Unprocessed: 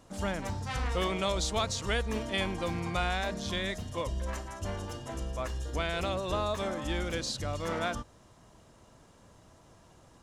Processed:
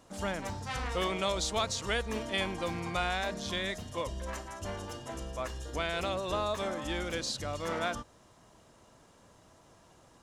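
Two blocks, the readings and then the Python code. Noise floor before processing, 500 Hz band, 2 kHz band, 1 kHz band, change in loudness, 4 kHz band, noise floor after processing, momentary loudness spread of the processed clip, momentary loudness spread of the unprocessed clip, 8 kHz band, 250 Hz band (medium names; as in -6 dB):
-59 dBFS, -0.5 dB, 0.0 dB, 0.0 dB, -1.0 dB, 0.0 dB, -61 dBFS, 9 LU, 8 LU, 0.0 dB, -2.5 dB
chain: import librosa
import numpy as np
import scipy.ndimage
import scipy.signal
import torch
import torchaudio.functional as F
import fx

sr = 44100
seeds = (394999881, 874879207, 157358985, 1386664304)

y = fx.low_shelf(x, sr, hz=180.0, db=-6.5)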